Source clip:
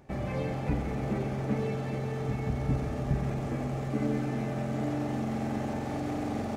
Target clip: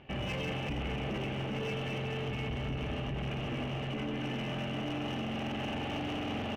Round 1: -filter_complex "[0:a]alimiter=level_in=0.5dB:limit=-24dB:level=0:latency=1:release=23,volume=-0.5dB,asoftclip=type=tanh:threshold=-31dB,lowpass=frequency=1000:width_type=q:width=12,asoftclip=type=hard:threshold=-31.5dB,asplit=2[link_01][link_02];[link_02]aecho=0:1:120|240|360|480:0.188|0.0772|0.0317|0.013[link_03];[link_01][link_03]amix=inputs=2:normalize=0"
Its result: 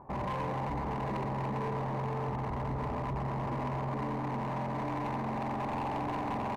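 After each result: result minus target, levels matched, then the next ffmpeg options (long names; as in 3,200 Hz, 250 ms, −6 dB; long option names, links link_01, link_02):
4,000 Hz band −14.5 dB; echo 41 ms late
-filter_complex "[0:a]alimiter=level_in=0.5dB:limit=-24dB:level=0:latency=1:release=23,volume=-0.5dB,asoftclip=type=tanh:threshold=-31dB,lowpass=frequency=2900:width_type=q:width=12,asoftclip=type=hard:threshold=-31.5dB,asplit=2[link_01][link_02];[link_02]aecho=0:1:120|240|360|480:0.188|0.0772|0.0317|0.013[link_03];[link_01][link_03]amix=inputs=2:normalize=0"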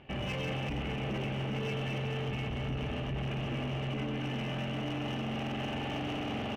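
echo 41 ms late
-filter_complex "[0:a]alimiter=level_in=0.5dB:limit=-24dB:level=0:latency=1:release=23,volume=-0.5dB,asoftclip=type=tanh:threshold=-31dB,lowpass=frequency=2900:width_type=q:width=12,asoftclip=type=hard:threshold=-31.5dB,asplit=2[link_01][link_02];[link_02]aecho=0:1:79|158|237|316:0.188|0.0772|0.0317|0.013[link_03];[link_01][link_03]amix=inputs=2:normalize=0"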